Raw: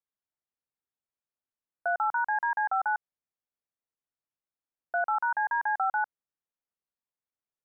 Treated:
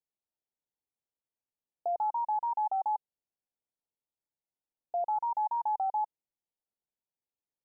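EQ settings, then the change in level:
elliptic low-pass filter 930 Hz, stop band 40 dB
0.0 dB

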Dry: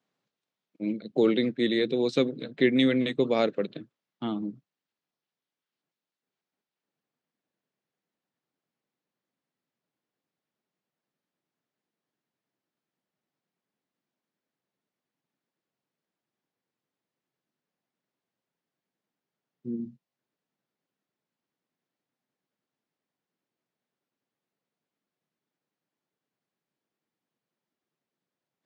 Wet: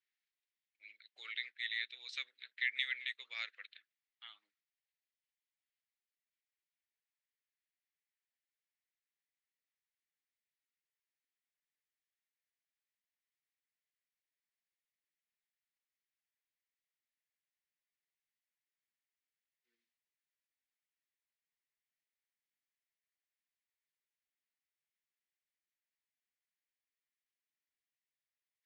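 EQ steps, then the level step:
four-pole ladder band-pass 2,200 Hz, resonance 55%
first difference
+12.0 dB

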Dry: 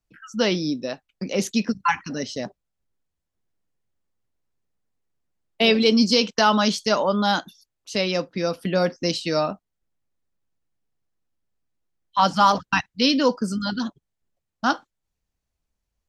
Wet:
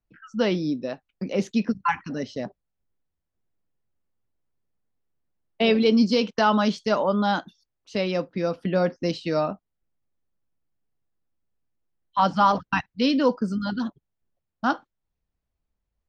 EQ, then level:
head-to-tape spacing loss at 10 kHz 21 dB
0.0 dB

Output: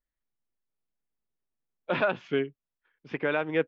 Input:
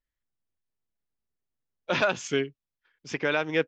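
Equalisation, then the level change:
low-pass filter 3,800 Hz 24 dB per octave
parametric band 85 Hz −14.5 dB 0.48 octaves
high-shelf EQ 3,000 Hz −11.5 dB
0.0 dB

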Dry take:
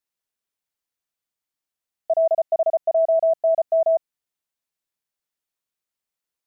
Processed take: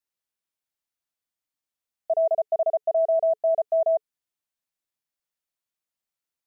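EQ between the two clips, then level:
notch filter 430 Hz, Q 12
−3.0 dB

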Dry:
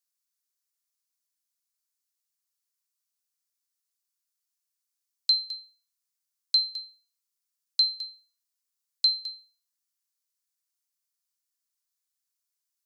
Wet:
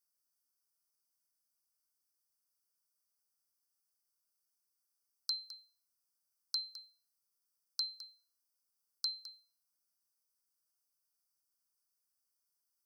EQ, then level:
elliptic band-stop filter 1,500–4,700 Hz
Chebyshev band-stop filter 2,200–4,500 Hz, order 2
notch filter 7,000 Hz, Q 5.5
+1.5 dB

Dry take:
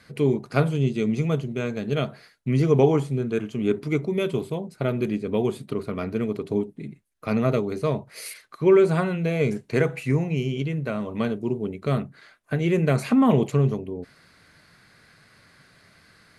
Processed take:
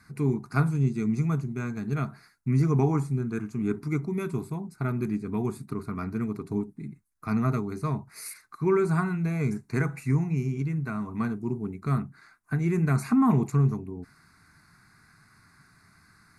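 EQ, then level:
parametric band 1,800 Hz −4.5 dB 0.31 octaves
phaser with its sweep stopped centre 1,300 Hz, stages 4
0.0 dB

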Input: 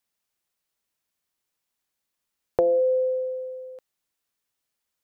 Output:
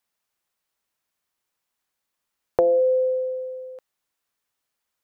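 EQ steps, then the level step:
parametric band 1,100 Hz +4.5 dB 2.1 octaves
0.0 dB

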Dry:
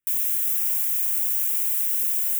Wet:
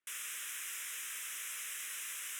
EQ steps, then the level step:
resonant band-pass 570 Hz, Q 0.54
high-frequency loss of the air 51 metres
spectral tilt +3.5 dB per octave
+5.0 dB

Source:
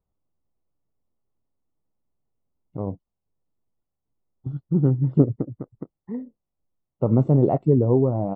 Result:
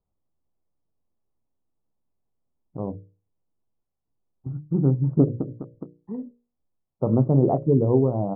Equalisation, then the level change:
low-pass filter 1,300 Hz 24 dB per octave
mains-hum notches 50/100/150 Hz
mains-hum notches 60/120/180/240/300/360/420/480/540/600 Hz
0.0 dB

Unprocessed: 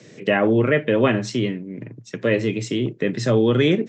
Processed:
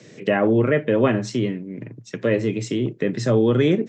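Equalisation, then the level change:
dynamic equaliser 3,100 Hz, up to −6 dB, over −36 dBFS, Q 0.79
0.0 dB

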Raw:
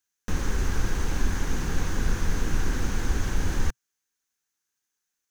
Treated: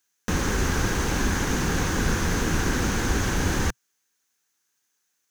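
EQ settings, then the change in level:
high-pass filter 110 Hz 6 dB per octave
+8.0 dB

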